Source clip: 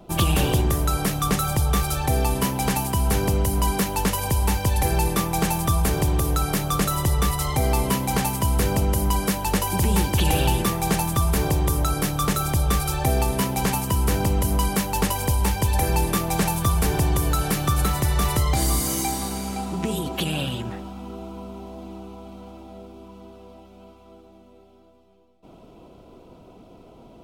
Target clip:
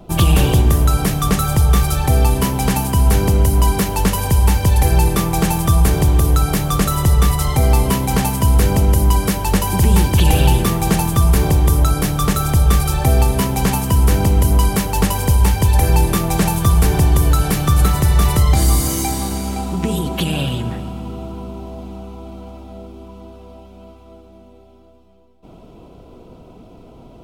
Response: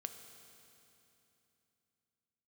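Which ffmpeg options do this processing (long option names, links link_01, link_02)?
-filter_complex "[0:a]asplit=2[link_01][link_02];[1:a]atrim=start_sample=2205,lowshelf=frequency=200:gain=10.5[link_03];[link_02][link_03]afir=irnorm=-1:irlink=0,volume=3dB[link_04];[link_01][link_04]amix=inputs=2:normalize=0,volume=-2dB"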